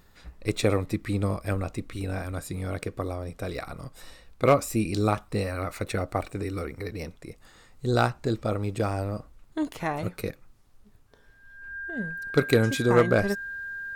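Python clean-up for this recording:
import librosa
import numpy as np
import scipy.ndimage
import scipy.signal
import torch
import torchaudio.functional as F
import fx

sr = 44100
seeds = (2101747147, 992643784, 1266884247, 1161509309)

y = fx.fix_declip(x, sr, threshold_db=-10.5)
y = fx.notch(y, sr, hz=1600.0, q=30.0)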